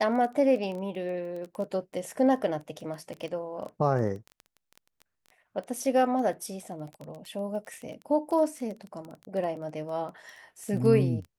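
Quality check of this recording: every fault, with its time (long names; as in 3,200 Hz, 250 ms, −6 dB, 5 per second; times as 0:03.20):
surface crackle 14 per second −34 dBFS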